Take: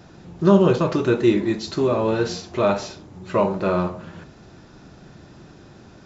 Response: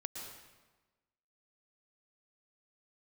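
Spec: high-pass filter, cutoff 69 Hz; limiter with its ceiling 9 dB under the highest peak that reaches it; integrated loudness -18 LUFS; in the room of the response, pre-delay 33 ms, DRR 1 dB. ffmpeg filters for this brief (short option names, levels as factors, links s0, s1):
-filter_complex "[0:a]highpass=69,alimiter=limit=0.211:level=0:latency=1,asplit=2[s0][s1];[1:a]atrim=start_sample=2205,adelay=33[s2];[s1][s2]afir=irnorm=-1:irlink=0,volume=1[s3];[s0][s3]amix=inputs=2:normalize=0,volume=1.68"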